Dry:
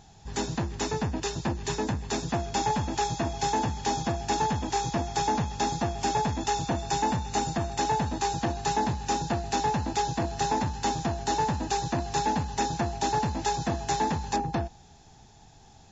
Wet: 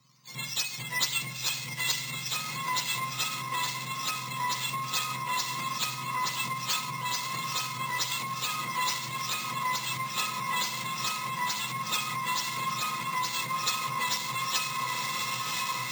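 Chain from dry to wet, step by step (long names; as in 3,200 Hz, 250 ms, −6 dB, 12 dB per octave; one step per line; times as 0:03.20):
frequency axis turned over on the octave scale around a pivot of 930 Hz
high-shelf EQ 4,000 Hz +6 dB
feedback delay with all-pass diffusion 915 ms, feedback 53%, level −5 dB
convolution reverb, pre-delay 3 ms, DRR 11.5 dB
downward compressor 6 to 1, threshold −35 dBFS, peak gain reduction 15.5 dB
brickwall limiter −31 dBFS, peak gain reduction 6.5 dB
tilt shelving filter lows −9.5 dB
bad sample-rate conversion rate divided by 4×, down filtered, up hold
multiband upward and downward expander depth 100%
level +8.5 dB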